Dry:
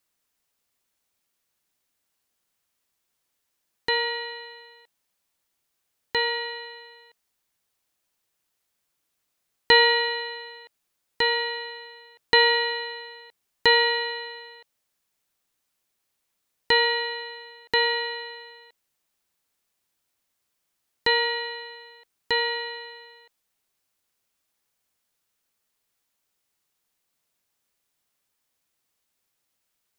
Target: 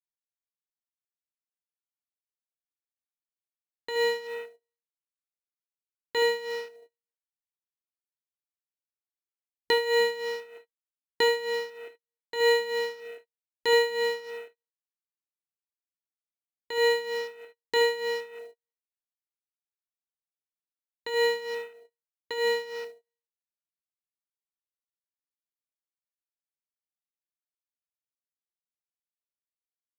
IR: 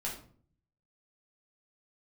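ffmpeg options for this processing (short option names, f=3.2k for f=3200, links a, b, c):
-af "lowshelf=f=290:g=-6,afwtdn=0.0112,aecho=1:1:28|75:0.299|0.224,alimiter=limit=-14dB:level=0:latency=1:release=304,tremolo=f=3.2:d=0.77,agate=range=-31dB:threshold=-54dB:ratio=16:detection=peak,equalizer=f=370:t=o:w=1.4:g=9,acrusher=bits=6:mode=log:mix=0:aa=0.000001"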